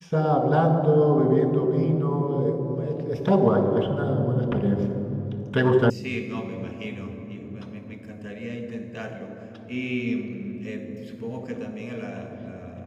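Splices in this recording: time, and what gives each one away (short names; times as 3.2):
5.9 sound cut off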